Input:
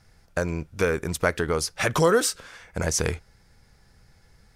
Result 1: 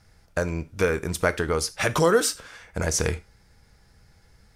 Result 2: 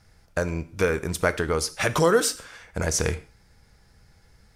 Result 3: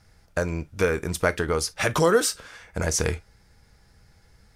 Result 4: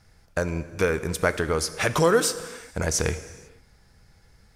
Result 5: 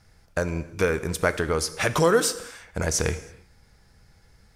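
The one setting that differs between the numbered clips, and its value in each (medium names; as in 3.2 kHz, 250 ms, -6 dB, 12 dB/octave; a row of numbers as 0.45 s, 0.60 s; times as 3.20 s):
gated-style reverb, gate: 120 ms, 180 ms, 80 ms, 520 ms, 350 ms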